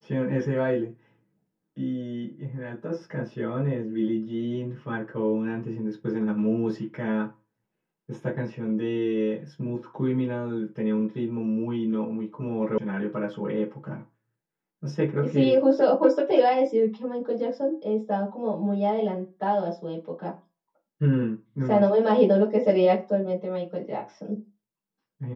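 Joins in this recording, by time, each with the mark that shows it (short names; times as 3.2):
12.78 sound cut off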